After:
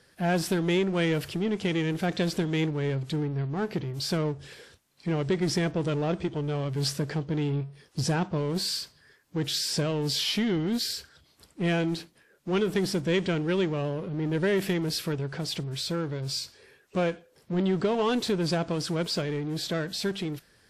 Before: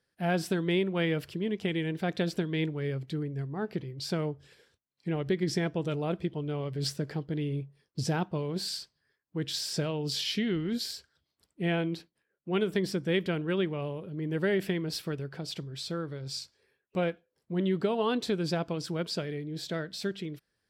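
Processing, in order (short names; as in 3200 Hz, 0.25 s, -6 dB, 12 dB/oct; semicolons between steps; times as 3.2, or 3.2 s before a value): 6.17–6.77 bell 120 Hz -> 570 Hz -7 dB 0.4 oct; power-law curve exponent 0.7; WMA 64 kbps 32000 Hz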